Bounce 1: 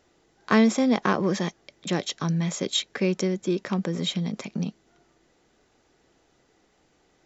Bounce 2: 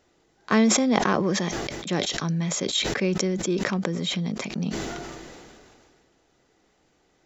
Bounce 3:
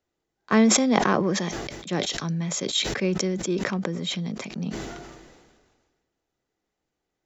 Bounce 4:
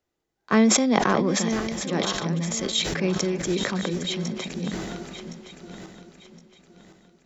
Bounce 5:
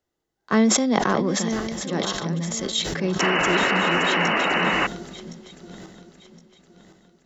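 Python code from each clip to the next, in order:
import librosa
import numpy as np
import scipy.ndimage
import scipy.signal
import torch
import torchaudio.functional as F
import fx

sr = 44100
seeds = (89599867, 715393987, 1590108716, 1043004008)

y1 = fx.sustainer(x, sr, db_per_s=26.0)
y1 = y1 * librosa.db_to_amplitude(-1.0)
y2 = fx.band_widen(y1, sr, depth_pct=40)
y2 = y2 * librosa.db_to_amplitude(-1.0)
y3 = fx.reverse_delay_fb(y2, sr, ms=533, feedback_pct=55, wet_db=-9.0)
y4 = fx.spec_paint(y3, sr, seeds[0], shape='noise', start_s=3.19, length_s=1.68, low_hz=240.0, high_hz=3000.0, level_db=-21.0)
y4 = fx.notch(y4, sr, hz=2400.0, q=8.6)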